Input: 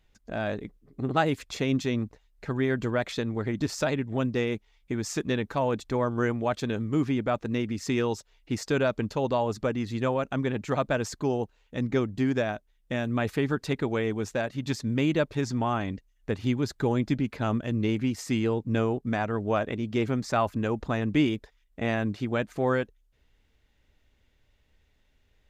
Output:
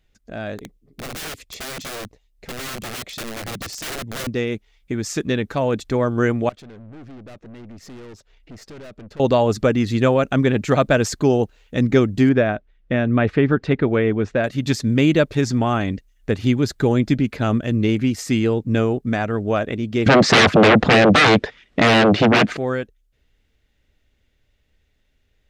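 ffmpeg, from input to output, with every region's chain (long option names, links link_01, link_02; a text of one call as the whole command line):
ffmpeg -i in.wav -filter_complex "[0:a]asettb=1/sr,asplit=3[link_01][link_02][link_03];[link_01]atrim=end=0.584[link_04];[link_02]atrim=start=0.58:end=4.27,asetpts=PTS-STARTPTS,afade=type=in:duration=0.004:curve=qsin,afade=type=out:start_time=3.686:duration=0.004:curve=qsin,equalizer=frequency=1500:width=2.4:gain=-9,aeval=exprs='(mod(23.7*val(0)+1,2)-1)/23.7':channel_layout=same[link_05];[link_03]atrim=start=4.266[link_06];[link_04][link_05]acrossfade=duration=0.004:curve1=hsin:curve2=qsin[link_07];[link_07][link_06]acrossfade=duration=0.004:curve1=qsin:curve2=hsin,asettb=1/sr,asplit=3[link_08][link_09][link_10];[link_08]atrim=end=6.494[link_11];[link_09]atrim=start=6.49:end=9.2,asetpts=PTS-STARTPTS,afade=type=in:duration=0.004:curve=qsin,afade=type=out:start_time=2.706:duration=0.004:curve=qsin,lowpass=frequency=2500:poles=1,acompressor=threshold=-57dB:ratio=1.5:attack=3.2:release=140:knee=1:detection=peak,aeval=exprs='(tanh(224*val(0)+0.5)-tanh(0.5))/224':channel_layout=same[link_12];[link_10]atrim=start=9.196[link_13];[link_11][link_12]acrossfade=duration=0.004:curve1=hsin:curve2=qsin[link_14];[link_14][link_13]acrossfade=duration=0.004:curve1=qsin:curve2=hsin,asettb=1/sr,asplit=3[link_15][link_16][link_17];[link_15]atrim=end=12.294[link_18];[link_16]atrim=start=12.29:end=14.44,asetpts=PTS-STARTPTS,afade=type=in:duration=0.004:curve=qsin,afade=type=out:start_time=2.146:duration=0.004:curve=qsin,lowpass=2400,bandreject=frequency=800:width=20[link_19];[link_17]atrim=start=14.436[link_20];[link_18][link_19]acrossfade=duration=0.004:curve1=hsin:curve2=qsin[link_21];[link_21][link_20]acrossfade=duration=0.004:curve1=qsin:curve2=hsin,asettb=1/sr,asplit=3[link_22][link_23][link_24];[link_22]atrim=end=20.064[link_25];[link_23]atrim=start=20.06:end=22.57,asetpts=PTS-STARTPTS,afade=type=in:duration=0.004:curve=qsin,afade=type=out:start_time=2.506:duration=0.004:curve=qsin,aeval=exprs='0.266*sin(PI/2*8.91*val(0)/0.266)':channel_layout=same,highpass=130,lowpass=3500[link_26];[link_24]atrim=start=22.566[link_27];[link_25][link_26]acrossfade=duration=0.004:curve1=hsin:curve2=qsin[link_28];[link_28][link_27]acrossfade=duration=0.004:curve1=qsin:curve2=hsin,equalizer=frequency=950:width_type=o:width=0.54:gain=-6,dynaudnorm=framelen=720:gausssize=17:maxgain=11.5dB,volume=1.5dB" out.wav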